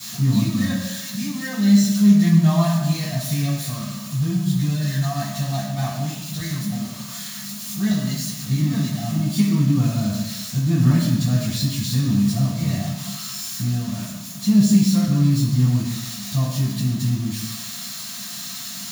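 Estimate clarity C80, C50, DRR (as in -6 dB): 5.0 dB, 2.0 dB, -11.5 dB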